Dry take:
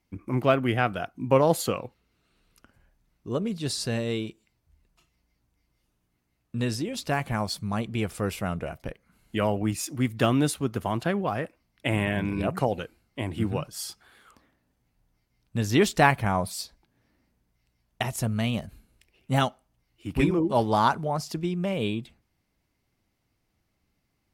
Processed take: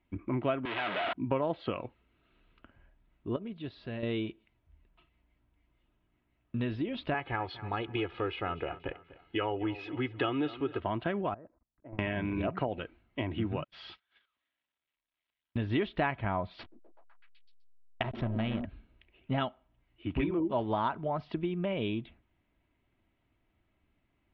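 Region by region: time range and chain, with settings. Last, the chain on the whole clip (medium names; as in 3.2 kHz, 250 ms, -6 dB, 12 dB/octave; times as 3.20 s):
0.65–1.13 s: one-bit comparator + frequency weighting A
3.36–4.03 s: gate -30 dBFS, range -7 dB + compression 3:1, threshold -37 dBFS
7.14–10.80 s: high-pass 200 Hz 6 dB/octave + comb 2.4 ms, depth 76% + feedback delay 245 ms, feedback 39%, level -18.5 dB
11.34–11.99 s: low-pass 1.2 kHz 24 dB/octave + level held to a coarse grid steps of 24 dB
13.64–15.57 s: zero-crossing glitches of -28 dBFS + gate -34 dBFS, range -38 dB
16.59–18.65 s: peaking EQ 5.5 kHz +9 dB 0.23 oct + hysteresis with a dead band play -28 dBFS + repeats whose band climbs or falls 126 ms, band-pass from 270 Hz, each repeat 0.7 oct, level -2 dB
whole clip: steep low-pass 3.5 kHz 48 dB/octave; comb 3.1 ms, depth 32%; compression 3:1, threshold -30 dBFS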